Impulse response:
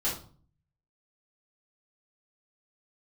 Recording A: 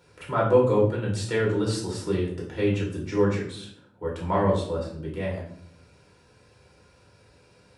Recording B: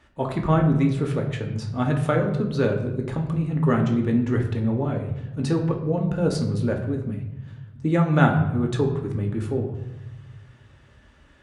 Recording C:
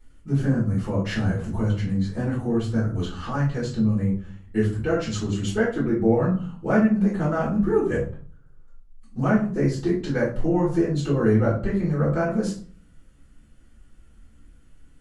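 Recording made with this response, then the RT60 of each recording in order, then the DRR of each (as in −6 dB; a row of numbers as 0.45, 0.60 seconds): C; 0.65, 0.95, 0.45 seconds; −4.0, 1.0, −9.0 decibels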